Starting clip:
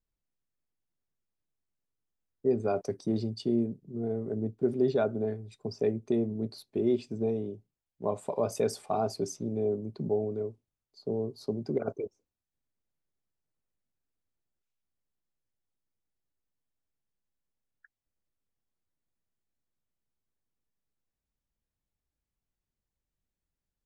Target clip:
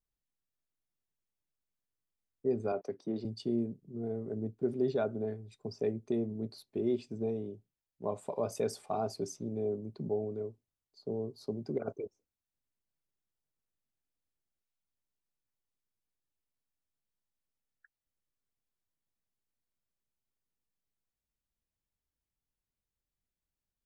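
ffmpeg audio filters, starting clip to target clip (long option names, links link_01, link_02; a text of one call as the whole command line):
ffmpeg -i in.wav -filter_complex "[0:a]asettb=1/sr,asplit=3[link_01][link_02][link_03];[link_01]atrim=end=2.724[link_04];[link_02]atrim=start=2.72:end=3.25,asetpts=PTS-STARTPTS,afade=type=in:duration=0.004:curve=qsin,afade=type=out:start_time=0.526:duration=0.004:curve=qsin,acrossover=split=190 4000:gain=0.251 1 0.224[link_05][link_06][link_07];[link_05][link_06][link_07]amix=inputs=3:normalize=0[link_08];[link_03]atrim=start=3.246[link_09];[link_04][link_08]acrossfade=duration=0.004:curve1=hsin:curve2=qsin[link_10];[link_10][link_09]acrossfade=duration=0.004:curve1=qsin:curve2=hsin,volume=-4.5dB" out.wav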